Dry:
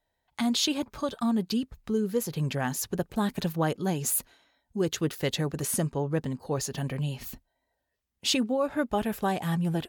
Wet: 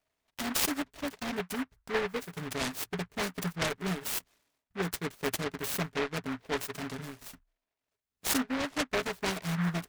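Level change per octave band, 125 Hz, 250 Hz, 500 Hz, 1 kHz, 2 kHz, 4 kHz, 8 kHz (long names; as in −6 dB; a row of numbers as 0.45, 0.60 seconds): −7.5, −7.0, −5.0, −3.5, +3.0, −4.0, −4.0 decibels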